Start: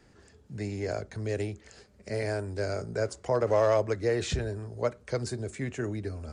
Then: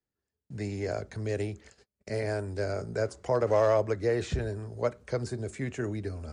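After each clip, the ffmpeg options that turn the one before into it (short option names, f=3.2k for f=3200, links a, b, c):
-filter_complex "[0:a]agate=range=-32dB:threshold=-50dB:ratio=16:detection=peak,acrossover=split=1900[a][b];[b]alimiter=level_in=11dB:limit=-24dB:level=0:latency=1:release=143,volume=-11dB[c];[a][c]amix=inputs=2:normalize=0"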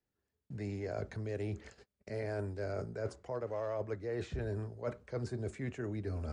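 -af "highshelf=f=5.3k:g=-11,areverse,acompressor=threshold=-37dB:ratio=10,areverse,volume=2.5dB"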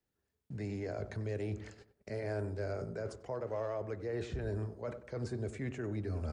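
-filter_complex "[0:a]alimiter=level_in=6.5dB:limit=-24dB:level=0:latency=1:release=52,volume=-6.5dB,asplit=2[a][b];[b]adelay=94,lowpass=f=1.1k:p=1,volume=-11dB,asplit=2[c][d];[d]adelay=94,lowpass=f=1.1k:p=1,volume=0.41,asplit=2[e][f];[f]adelay=94,lowpass=f=1.1k:p=1,volume=0.41,asplit=2[g][h];[h]adelay=94,lowpass=f=1.1k:p=1,volume=0.41[i];[c][e][g][i]amix=inputs=4:normalize=0[j];[a][j]amix=inputs=2:normalize=0,volume=1dB"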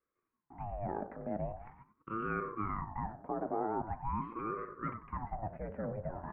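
-af "asuperpass=centerf=620:order=8:qfactor=0.53,aeval=exprs='val(0)*sin(2*PI*490*n/s+490*0.65/0.43*sin(2*PI*0.43*n/s))':c=same,volume=5.5dB"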